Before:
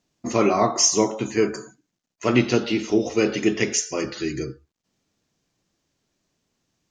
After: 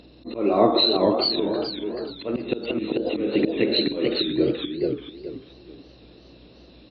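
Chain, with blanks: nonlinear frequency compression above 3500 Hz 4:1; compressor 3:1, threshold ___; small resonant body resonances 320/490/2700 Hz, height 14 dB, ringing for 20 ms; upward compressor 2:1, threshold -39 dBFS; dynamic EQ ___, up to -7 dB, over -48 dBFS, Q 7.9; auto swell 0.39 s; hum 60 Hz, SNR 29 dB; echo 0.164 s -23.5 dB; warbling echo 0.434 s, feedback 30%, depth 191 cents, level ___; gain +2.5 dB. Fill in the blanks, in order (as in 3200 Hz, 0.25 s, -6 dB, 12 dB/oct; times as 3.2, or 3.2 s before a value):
-23 dBFS, 3000 Hz, -3 dB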